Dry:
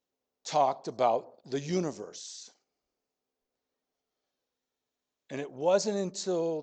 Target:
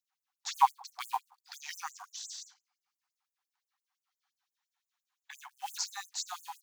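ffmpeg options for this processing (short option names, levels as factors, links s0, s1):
-af "acrusher=bits=6:mode=log:mix=0:aa=0.000001,equalizer=f=930:w=0.46:g=10,afftfilt=real='re*gte(b*sr/1024,700*pow(7000/700,0.5+0.5*sin(2*PI*5.8*pts/sr)))':imag='im*gte(b*sr/1024,700*pow(7000/700,0.5+0.5*sin(2*PI*5.8*pts/sr)))':win_size=1024:overlap=0.75"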